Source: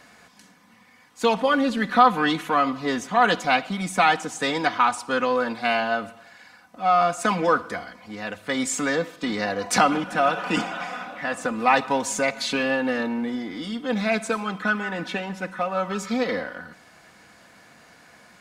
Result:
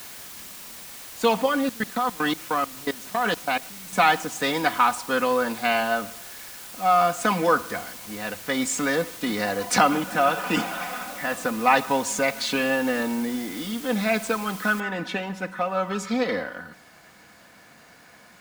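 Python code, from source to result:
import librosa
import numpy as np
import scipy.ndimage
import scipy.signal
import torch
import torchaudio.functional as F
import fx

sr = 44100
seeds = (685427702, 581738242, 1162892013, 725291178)

y = fx.level_steps(x, sr, step_db=23, at=(1.46, 3.93))
y = fx.noise_floor_step(y, sr, seeds[0], at_s=14.8, before_db=-41, after_db=-63, tilt_db=0.0)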